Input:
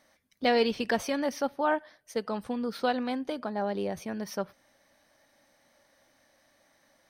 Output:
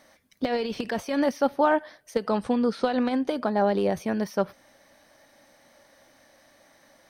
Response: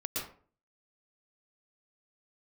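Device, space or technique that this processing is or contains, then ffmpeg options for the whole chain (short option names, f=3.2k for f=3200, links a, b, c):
de-esser from a sidechain: -filter_complex "[0:a]asettb=1/sr,asplit=3[a][b][c];[a]atrim=end=2.364[d];[b]atrim=start=2.36:end=3.27,asetpts=PTS-STARTPTS,afade=t=in:d=0.004:c=qsin,afade=t=out:st=0.906:d=0.004:c=qsin,lowpass=f=10k:w=0.5412,lowpass=f=10k:w=1.3066[e];[c]atrim=start=3.266[f];[d][e]acrossfade=d=0.004:c1=hsin:c2=qsin[g];[g][f]acrossfade=d=0.004:c1=qsin:c2=hsin,asplit=2[h][i];[i]highpass=4.7k,apad=whole_len=312871[j];[h][j]sidechaincompress=threshold=-49dB:ratio=8:attack=1.2:release=56,equalizer=f=450:t=o:w=2.3:g=2,volume=7dB"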